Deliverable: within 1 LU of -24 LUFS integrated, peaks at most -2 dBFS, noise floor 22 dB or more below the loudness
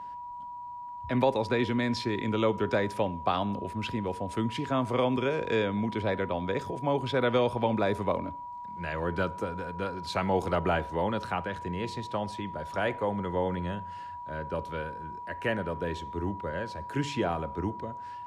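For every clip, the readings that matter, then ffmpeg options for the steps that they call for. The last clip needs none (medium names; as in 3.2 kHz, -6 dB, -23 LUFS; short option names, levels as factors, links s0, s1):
steady tone 970 Hz; tone level -38 dBFS; loudness -31.0 LUFS; peak level -13.5 dBFS; loudness target -24.0 LUFS
-> -af "bandreject=f=970:w=30"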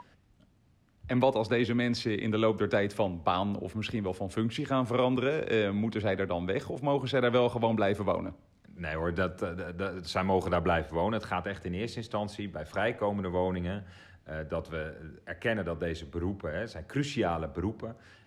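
steady tone not found; loudness -31.0 LUFS; peak level -13.5 dBFS; loudness target -24.0 LUFS
-> -af "volume=2.24"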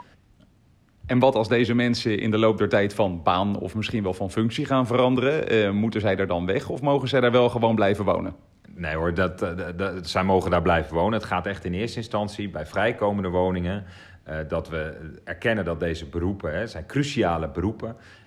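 loudness -24.0 LUFS; peak level -6.5 dBFS; noise floor -57 dBFS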